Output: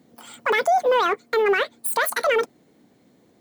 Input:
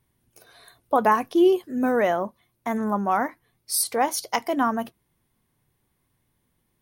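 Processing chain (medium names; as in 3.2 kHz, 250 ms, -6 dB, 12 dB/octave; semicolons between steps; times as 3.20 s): high-pass 99 Hz 12 dB/octave; bass shelf 270 Hz +11.5 dB; peak limiter -19 dBFS, peak gain reduction 13.5 dB; in parallel at -6.5 dB: saturation -36.5 dBFS, distortion -6 dB; on the sum: speed mistake 7.5 ips tape played at 15 ips; trim +5.5 dB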